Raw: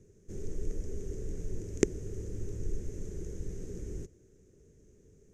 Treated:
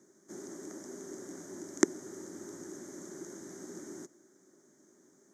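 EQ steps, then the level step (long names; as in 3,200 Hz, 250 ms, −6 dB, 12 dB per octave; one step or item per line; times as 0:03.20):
high-pass filter 310 Hz 24 dB per octave
high-shelf EQ 4,200 Hz −7.5 dB
phaser with its sweep stopped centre 1,100 Hz, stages 4
+13.5 dB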